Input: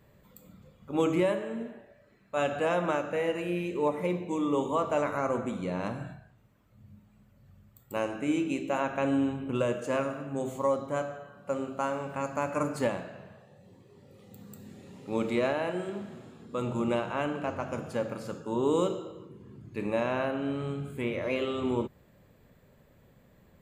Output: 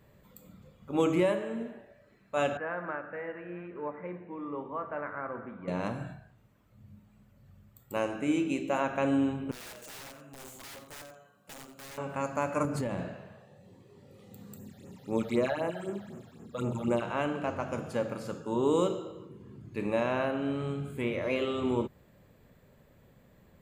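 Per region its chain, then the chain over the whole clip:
2.57–5.68 ladder low-pass 1900 Hz, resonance 60% + echo 0.877 s -22 dB
9.51–11.98 pre-emphasis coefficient 0.8 + wrapped overs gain 41 dB + echo 89 ms -11.5 dB
12.65–13.14 low shelf 270 Hz +11 dB + compressor 12:1, threshold -28 dBFS
14.56–17.02 high shelf 11000 Hz +11.5 dB + phaser stages 8, 3.9 Hz, lowest notch 300–4400 Hz
whole clip: dry

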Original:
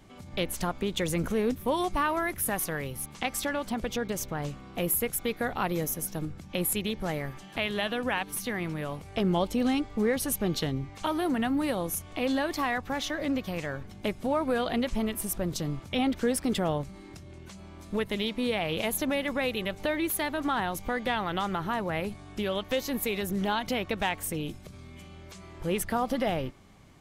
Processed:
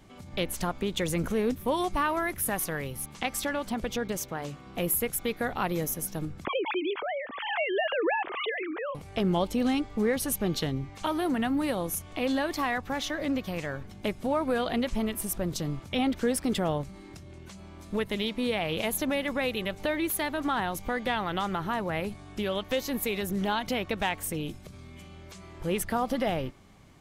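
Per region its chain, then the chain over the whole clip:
4.17–4.67 HPF 130 Hz 6 dB/oct + notches 50/100/150/200/250/300/350 Hz
6.45–8.95 sine-wave speech + backwards sustainer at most 47 dB/s
whole clip: dry

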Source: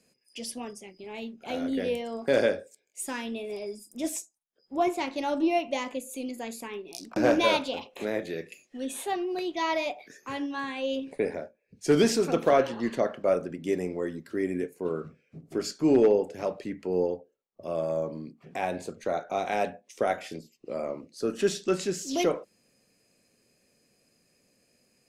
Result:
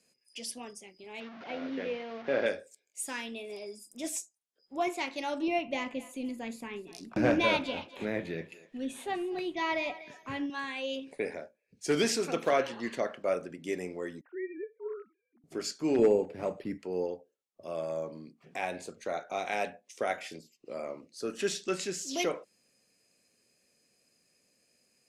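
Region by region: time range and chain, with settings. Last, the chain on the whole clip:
1.2–2.46 delta modulation 32 kbps, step -34 dBFS + BPF 110–2300 Hz
5.48–10.5 tone controls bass +14 dB, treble -9 dB + thinning echo 0.244 s, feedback 36%, high-pass 480 Hz, level -16 dB
14.21–15.44 sine-wave speech + HPF 610 Hz + tilt -4.5 dB/oct
15.99–16.78 low shelf 310 Hz +10.5 dB + decimation joined by straight lines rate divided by 6×
whole clip: dynamic EQ 2200 Hz, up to +4 dB, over -46 dBFS, Q 1.8; LPF 11000 Hz 12 dB/oct; tilt +1.5 dB/oct; gain -4.5 dB

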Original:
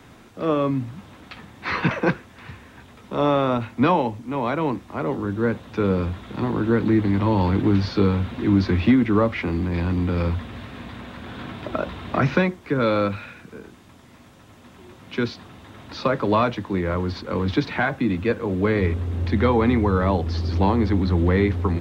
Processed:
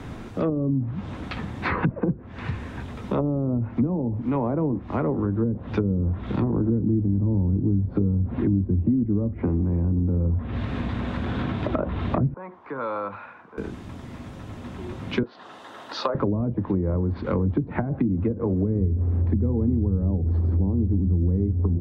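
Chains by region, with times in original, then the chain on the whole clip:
12.34–13.58 compressor 2:1, threshold -25 dBFS + band-pass 990 Hz, Q 2.7
15.23–16.15 HPF 620 Hz + bell 2300 Hz -10 dB 0.26 oct
whole clip: treble ducked by the level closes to 310 Hz, closed at -17.5 dBFS; tilt -2 dB/oct; compressor 3:1, threshold -31 dBFS; gain +7 dB

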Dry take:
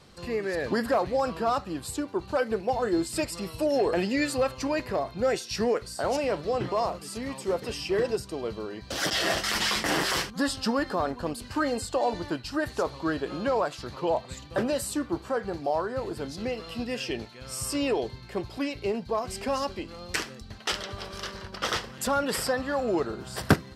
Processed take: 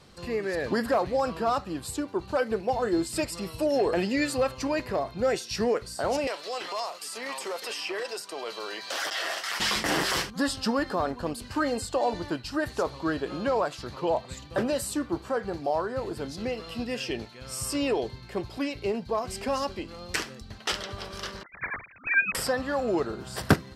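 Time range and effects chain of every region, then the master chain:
6.27–9.6 HPF 710 Hz + transient shaper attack -7 dB, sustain 0 dB + three-band squash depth 100%
21.43–22.35 sine-wave speech + inverted band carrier 3000 Hz
whole clip: dry

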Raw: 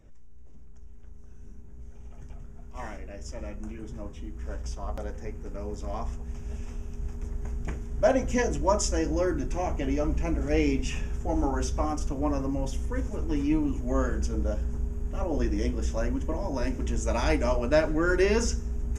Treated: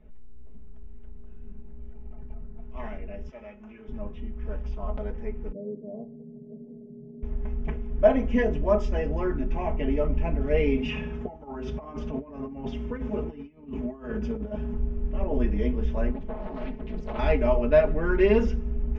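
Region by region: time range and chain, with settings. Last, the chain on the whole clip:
1.93–2.58 air absorption 380 m + careless resampling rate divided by 6×, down none, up hold
3.29–3.88 HPF 170 Hz 6 dB/oct + low shelf 490 Hz -9.5 dB
5.52–7.23 elliptic band-pass 140–570 Hz + air absorption 420 m
10.77–14.74 HPF 91 Hz + negative-ratio compressor -34 dBFS, ratio -0.5
16.11–17.19 minimum comb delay 4.6 ms + resonator 180 Hz, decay 0.18 s + Doppler distortion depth 0.82 ms
whole clip: LPF 3000 Hz 24 dB/oct; bell 1500 Hz -5.5 dB 0.89 oct; comb 4.7 ms, depth 89%

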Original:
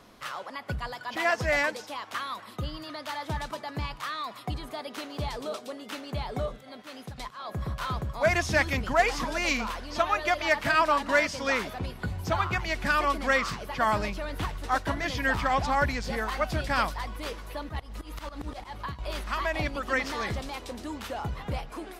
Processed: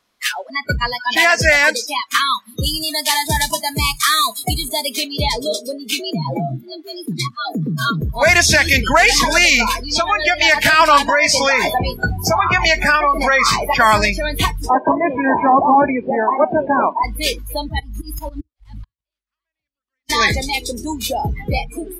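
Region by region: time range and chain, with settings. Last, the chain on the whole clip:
2.63–4.94 CVSD 64 kbps + high shelf 8700 Hz +10 dB
5.99–8.01 low shelf 160 Hz +8 dB + compressor 10:1, threshold -29 dBFS + frequency shift +94 Hz
9.98–10.41 compressor 3:1, threshold -30 dBFS + Doppler distortion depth 0.12 ms
11.08–13.74 bell 790 Hz +7.5 dB 1.5 oct + compressor 16:1, threshold -26 dBFS + doubler 17 ms -10.5 dB
14.69–17.04 delta modulation 32 kbps, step -41.5 dBFS + speaker cabinet 250–2200 Hz, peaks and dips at 260 Hz +7 dB, 370 Hz +5 dB, 630 Hz +5 dB, 950 Hz +6 dB, 1400 Hz -7 dB, 2000 Hz -7 dB
18.4–20.1 bell 800 Hz -6.5 dB 1.3 oct + flipped gate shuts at -30 dBFS, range -41 dB
whole clip: tilt shelf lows -6 dB, about 1200 Hz; spectral noise reduction 30 dB; maximiser +18.5 dB; gain -1 dB

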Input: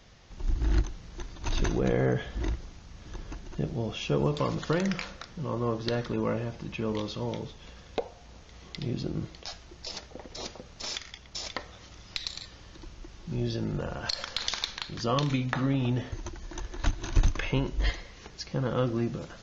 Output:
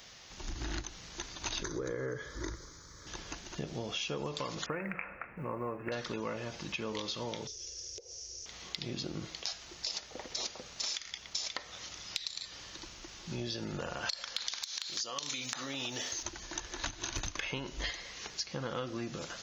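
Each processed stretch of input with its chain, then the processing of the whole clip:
1.63–3.07 bell 180 Hz +12.5 dB 0.92 oct + fixed phaser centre 740 Hz, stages 6
4.66–5.92 Chebyshev low-pass 2600 Hz, order 8 + short-mantissa float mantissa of 8-bit
7.47–8.46 compressor 5:1, threshold -44 dBFS + EQ curve 110 Hz 0 dB, 230 Hz -28 dB, 360 Hz +3 dB, 520 Hz -4 dB, 790 Hz -23 dB, 1300 Hz -20 dB, 2700 Hz -12 dB, 3900 Hz -11 dB, 5600 Hz +14 dB, 9800 Hz -10 dB
14.63–16.23 tone controls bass -11 dB, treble +15 dB + compressor 5:1, threshold -32 dBFS
whole clip: tilt +3 dB/oct; compressor, threshold -36 dBFS; gain +2 dB

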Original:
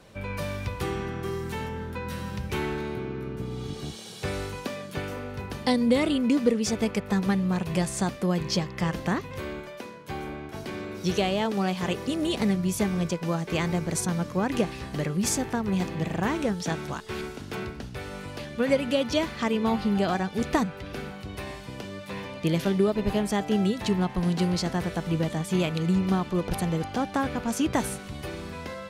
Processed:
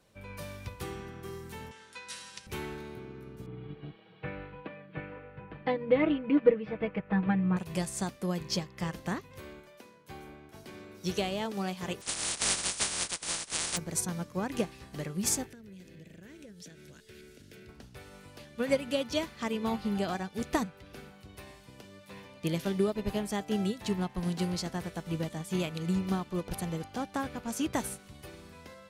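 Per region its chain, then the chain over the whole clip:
1.71–2.47 weighting filter ITU-R 468 + careless resampling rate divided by 2×, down none, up filtered
3.46–7.57 inverse Chebyshev low-pass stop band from 6300 Hz, stop band 50 dB + comb 6.3 ms, depth 76%
12–13.76 spectral contrast lowered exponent 0.1 + brick-wall FIR low-pass 10000 Hz
15.46–17.69 band shelf 950 Hz -15 dB 1 oct + compressor 5:1, threshold -34 dBFS
whole clip: high shelf 6100 Hz +8 dB; upward expander 1.5:1, over -38 dBFS; gain -2 dB

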